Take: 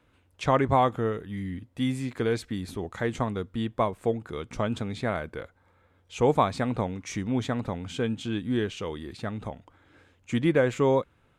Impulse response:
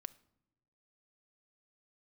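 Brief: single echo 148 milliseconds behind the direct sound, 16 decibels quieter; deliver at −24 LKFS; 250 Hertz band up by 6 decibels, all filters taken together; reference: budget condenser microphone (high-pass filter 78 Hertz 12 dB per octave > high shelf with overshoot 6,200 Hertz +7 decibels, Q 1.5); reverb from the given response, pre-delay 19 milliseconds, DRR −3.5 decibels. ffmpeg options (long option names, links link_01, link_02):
-filter_complex "[0:a]equalizer=frequency=250:width_type=o:gain=7,aecho=1:1:148:0.158,asplit=2[link_01][link_02];[1:a]atrim=start_sample=2205,adelay=19[link_03];[link_02][link_03]afir=irnorm=-1:irlink=0,volume=8dB[link_04];[link_01][link_04]amix=inputs=2:normalize=0,highpass=78,highshelf=frequency=6200:width_type=q:width=1.5:gain=7,volume=-4dB"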